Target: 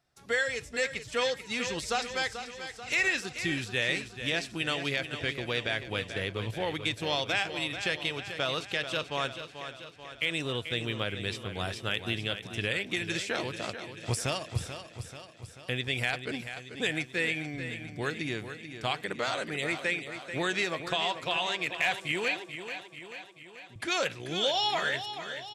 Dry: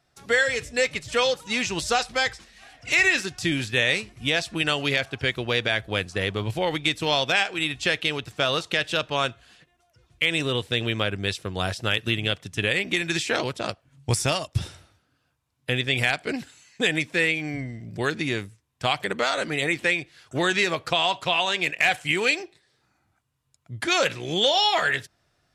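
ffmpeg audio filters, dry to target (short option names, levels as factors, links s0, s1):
-filter_complex "[0:a]asettb=1/sr,asplit=3[s0][s1][s2];[s0]atrim=end=22.284[s3];[s1]atrim=start=22.28:end=23.76,asetpts=PTS-STARTPTS,afade=t=in:d=0.004:c=qsin,afade=t=out:st=1.476:d=0.004:c=qsin,highpass=250,lowpass=3300[s4];[s2]atrim=start=23.756[s5];[s3][s4]acrossfade=d=0.004:c1=hsin:c2=qsin[s6];[s6][s5]acrossfade=d=0.004:c1=qsin:c2=hsin,asplit=2[s7][s8];[s8]aecho=0:1:437|874|1311|1748|2185|2622|3059:0.316|0.183|0.106|0.0617|0.0358|0.0208|0.012[s9];[s7][s9]amix=inputs=2:normalize=0,volume=0.422"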